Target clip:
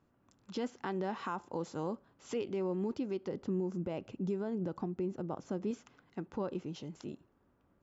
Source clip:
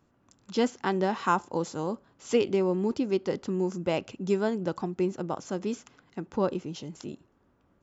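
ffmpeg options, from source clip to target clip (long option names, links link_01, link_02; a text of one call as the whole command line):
ffmpeg -i in.wav -filter_complex "[0:a]asettb=1/sr,asplit=3[link_01][link_02][link_03];[link_01]atrim=end=3.284[link_04];[link_02]atrim=start=3.28:end=5.71,asetpts=PTS-STARTPTS,afade=type=in:duration=0.004:curve=qsin,afade=type=out:start_time=2.426:duration=0.004:curve=qsin,tiltshelf=frequency=730:gain=4[link_05];[link_03]atrim=start=5.706[link_06];[link_04][link_05]acrossfade=duration=0.004:curve1=hsin:curve2=qsin[link_07];[link_07][link_06]acrossfade=duration=0.004:curve1=qsin:curve2=hsin,alimiter=limit=-22.5dB:level=0:latency=1:release=158,highshelf=frequency=5800:gain=-10.5,volume=-4.5dB" out.wav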